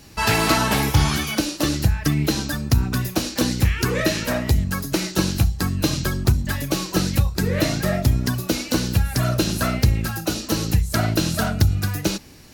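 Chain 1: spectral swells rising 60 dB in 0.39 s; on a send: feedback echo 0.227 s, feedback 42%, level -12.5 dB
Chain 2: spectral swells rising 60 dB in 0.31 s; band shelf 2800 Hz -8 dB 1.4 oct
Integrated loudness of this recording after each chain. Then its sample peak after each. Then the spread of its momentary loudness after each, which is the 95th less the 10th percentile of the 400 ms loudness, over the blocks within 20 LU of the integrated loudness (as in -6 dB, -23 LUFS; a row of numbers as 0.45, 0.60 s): -19.5, -20.5 LUFS; -4.0, -4.5 dBFS; 4, 4 LU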